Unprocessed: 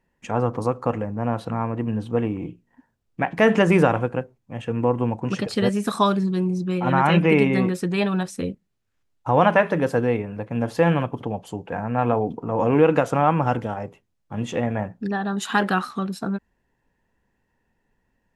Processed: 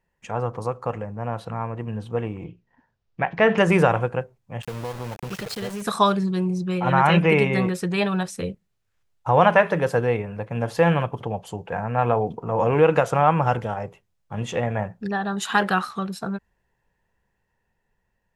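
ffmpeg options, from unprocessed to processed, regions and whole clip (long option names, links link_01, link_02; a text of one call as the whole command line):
ffmpeg -i in.wav -filter_complex "[0:a]asettb=1/sr,asplit=3[link_01][link_02][link_03];[link_01]atrim=end=2.444[link_04];[link_02]atrim=start=2.44:end=3.58,asetpts=PTS-STARTPTS,afade=type=in:duration=0.004:curve=qsin,afade=type=out:start_time=1.136:duration=0.004:curve=qsin,acrossover=split=4300[link_05][link_06];[link_06]acompressor=threshold=-57dB:ratio=4:attack=1:release=60[link_07];[link_05][link_07]amix=inputs=2:normalize=0,lowpass=frequency=5800:width=0.5412,lowpass=frequency=5800:width=1.3066[link_08];[link_03]atrim=start=3.576[link_09];[link_04][link_08]acrossfade=duration=0.004:curve1=hsin:curve2=qsin[link_10];[link_10][link_09]acrossfade=duration=0.004:curve1=qsin:curve2=hsin,asettb=1/sr,asplit=3[link_11][link_12][link_13];[link_11]atrim=end=4.624[link_14];[link_12]atrim=start=4.62:end=5.82,asetpts=PTS-STARTPTS,afade=type=in:duration=0.004:curve=qsin,afade=type=out:start_time=1.196:duration=0.004:curve=qsin,acompressor=threshold=-27dB:ratio=4:attack=3.2:release=140:knee=1:detection=peak,aeval=exprs='val(0)*gte(abs(val(0)),0.0188)':channel_layout=same[link_15];[link_13]atrim=start=5.816[link_16];[link_14][link_15]acrossfade=duration=0.004:curve1=hsin:curve2=qsin[link_17];[link_17][link_16]acrossfade=duration=0.004:curve1=qsin:curve2=hsin,equalizer=frequency=270:width=2.7:gain=-12,dynaudnorm=framelen=650:gausssize=9:maxgain=11.5dB,volume=-2.5dB" out.wav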